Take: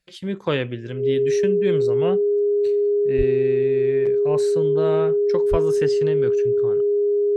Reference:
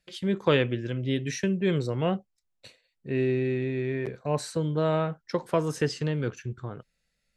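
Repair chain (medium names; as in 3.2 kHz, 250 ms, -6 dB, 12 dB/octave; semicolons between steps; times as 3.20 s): band-stop 410 Hz, Q 30; 3.17–3.29 s: high-pass 140 Hz 24 dB/octave; 5.50–5.62 s: high-pass 140 Hz 24 dB/octave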